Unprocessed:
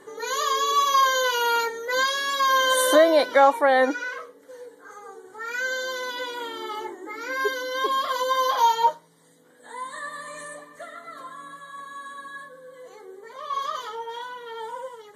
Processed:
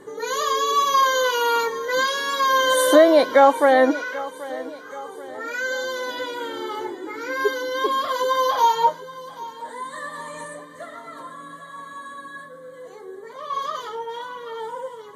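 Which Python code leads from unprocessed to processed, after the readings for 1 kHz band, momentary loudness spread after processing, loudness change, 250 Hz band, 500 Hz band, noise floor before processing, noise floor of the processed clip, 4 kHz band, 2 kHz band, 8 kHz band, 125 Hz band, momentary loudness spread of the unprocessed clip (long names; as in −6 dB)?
+2.0 dB, 22 LU, +2.0 dB, +6.5 dB, +4.0 dB, −53 dBFS, −41 dBFS, +0.5 dB, +1.0 dB, 0.0 dB, can't be measured, 21 LU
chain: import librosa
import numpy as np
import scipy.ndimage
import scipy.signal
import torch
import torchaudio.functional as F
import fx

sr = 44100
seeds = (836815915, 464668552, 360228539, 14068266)

y = fx.low_shelf(x, sr, hz=450.0, db=9.5)
y = fx.echo_feedback(y, sr, ms=782, feedback_pct=49, wet_db=-17.5)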